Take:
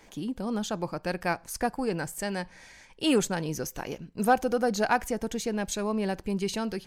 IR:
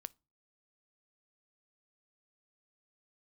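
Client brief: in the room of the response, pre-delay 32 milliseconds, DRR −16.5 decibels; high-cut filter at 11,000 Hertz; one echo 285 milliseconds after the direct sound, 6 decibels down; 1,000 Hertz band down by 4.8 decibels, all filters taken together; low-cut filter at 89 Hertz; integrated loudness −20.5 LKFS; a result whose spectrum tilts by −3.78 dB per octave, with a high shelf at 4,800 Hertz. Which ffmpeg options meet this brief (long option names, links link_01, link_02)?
-filter_complex "[0:a]highpass=89,lowpass=11000,equalizer=frequency=1000:width_type=o:gain=-7.5,highshelf=frequency=4800:gain=6,aecho=1:1:285:0.501,asplit=2[link_01][link_02];[1:a]atrim=start_sample=2205,adelay=32[link_03];[link_02][link_03]afir=irnorm=-1:irlink=0,volume=21.5dB[link_04];[link_01][link_04]amix=inputs=2:normalize=0,volume=-7.5dB"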